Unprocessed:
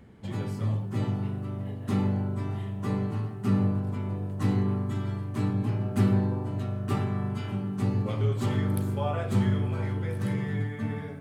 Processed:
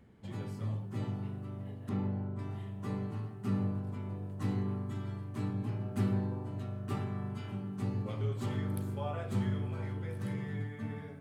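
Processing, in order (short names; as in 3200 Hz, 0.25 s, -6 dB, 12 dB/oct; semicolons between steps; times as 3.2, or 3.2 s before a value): 1.89–2.39 LPF 1800 Hz 6 dB/oct; gain -8 dB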